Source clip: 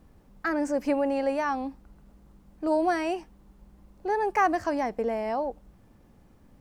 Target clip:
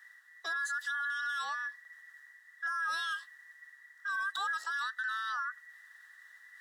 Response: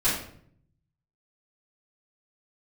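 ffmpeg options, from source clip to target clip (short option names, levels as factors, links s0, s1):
-af "afftfilt=real='real(if(between(b,1,1012),(2*floor((b-1)/92)+1)*92-b,b),0)':imag='imag(if(between(b,1,1012),(2*floor((b-1)/92)+1)*92-b,b),0)*if(between(b,1,1012),-1,1)':win_size=2048:overlap=0.75,highpass=1300,equalizer=f=7300:w=0.4:g=7.5,areverse,acompressor=mode=upward:threshold=0.00708:ratio=2.5,areverse,alimiter=limit=0.0794:level=0:latency=1:release=14,volume=0.531"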